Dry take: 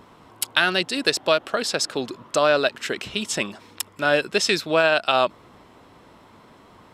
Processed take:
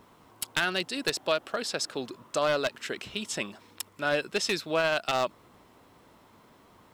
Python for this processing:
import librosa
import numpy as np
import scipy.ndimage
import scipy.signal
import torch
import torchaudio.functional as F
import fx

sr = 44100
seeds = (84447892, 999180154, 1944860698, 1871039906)

y = np.minimum(x, 2.0 * 10.0 ** (-12.5 / 20.0) - x)
y = fx.quant_dither(y, sr, seeds[0], bits=10, dither='none')
y = y * librosa.db_to_amplitude(-7.5)